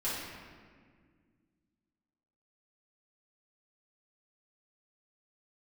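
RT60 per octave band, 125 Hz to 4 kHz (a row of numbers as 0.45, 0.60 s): 2.7, 2.8, 2.0, 1.6, 1.6, 1.2 s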